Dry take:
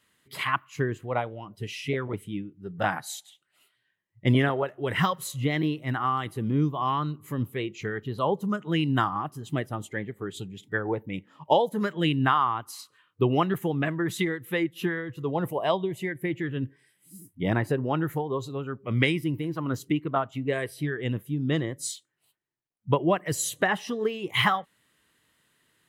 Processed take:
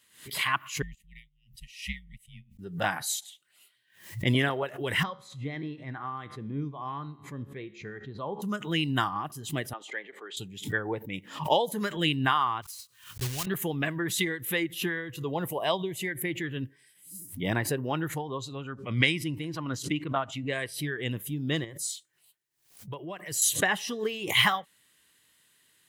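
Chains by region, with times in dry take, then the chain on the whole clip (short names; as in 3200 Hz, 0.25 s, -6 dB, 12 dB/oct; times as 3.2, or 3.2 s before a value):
0.82–2.59 frequency shift -77 Hz + brick-wall FIR band-stop 220–1800 Hz + upward expander 2.5:1, over -46 dBFS
5.03–8.42 tape spacing loss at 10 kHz 27 dB + notch 2900 Hz, Q 6.5 + resonator 70 Hz, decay 0.66 s, mix 50%
9.73–10.37 Bessel high-pass 560 Hz, order 4 + air absorption 160 m
12.62–13.47 block floating point 3-bit + EQ curve 120 Hz 0 dB, 270 Hz -17 dB, 6300 Hz -8 dB
18.08–20.74 LPF 7700 Hz + bell 410 Hz -4.5 dB 0.38 oct
21.64–23.42 notch 250 Hz, Q 5 + compressor 2:1, threshold -41 dBFS
whole clip: high shelf 2200 Hz +12 dB; notch 1300 Hz, Q 17; backwards sustainer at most 120 dB/s; gain -4.5 dB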